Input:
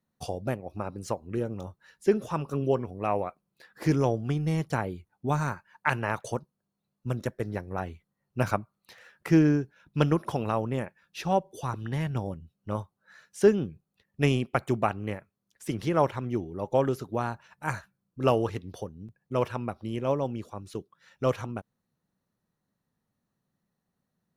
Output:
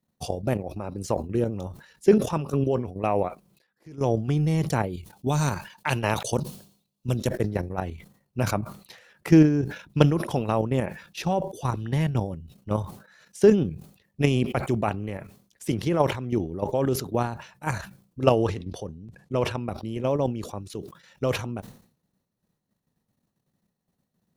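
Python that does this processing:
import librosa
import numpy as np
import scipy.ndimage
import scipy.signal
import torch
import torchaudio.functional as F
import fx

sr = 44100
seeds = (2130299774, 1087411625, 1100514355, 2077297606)

y = fx.high_shelf_res(x, sr, hz=2500.0, db=6.0, q=1.5, at=(4.93, 7.29))
y = fx.bessel_lowpass(y, sr, hz=9200.0, order=2, at=(18.23, 19.6))
y = fx.edit(y, sr, fx.fade_down_up(start_s=3.27, length_s=0.76, db=-23.5, fade_s=0.25, curve='exp'), tone=tone)
y = fx.level_steps(y, sr, step_db=10)
y = fx.peak_eq(y, sr, hz=1400.0, db=-5.5, octaves=1.1)
y = fx.sustainer(y, sr, db_per_s=110.0)
y = y * 10.0 ** (8.0 / 20.0)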